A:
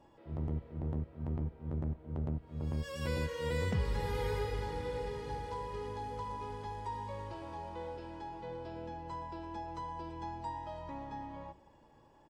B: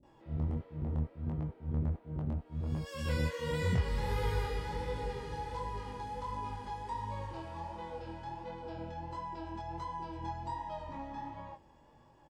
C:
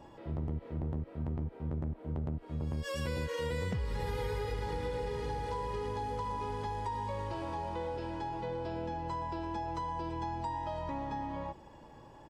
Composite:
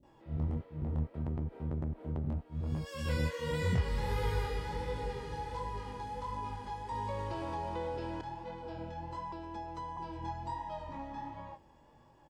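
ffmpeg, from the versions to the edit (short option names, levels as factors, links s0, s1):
-filter_complex "[2:a]asplit=2[s0][s1];[1:a]asplit=4[s2][s3][s4][s5];[s2]atrim=end=1.142[s6];[s0]atrim=start=1.138:end=2.242[s7];[s3]atrim=start=2.238:end=6.922[s8];[s1]atrim=start=6.918:end=8.212[s9];[s4]atrim=start=8.208:end=9.322[s10];[0:a]atrim=start=9.318:end=9.972[s11];[s5]atrim=start=9.968[s12];[s6][s7]acrossfade=d=0.004:c1=hsin:c2=hsin[s13];[s13][s8]acrossfade=d=0.004:c1=hsin:c2=hsin[s14];[s14][s9]acrossfade=d=0.004:c1=hsin:c2=hsin[s15];[s15][s10]acrossfade=d=0.004:c1=hsin:c2=hsin[s16];[s16][s11]acrossfade=d=0.004:c1=hsin:c2=hsin[s17];[s17][s12]acrossfade=d=0.004:c1=hsin:c2=hsin"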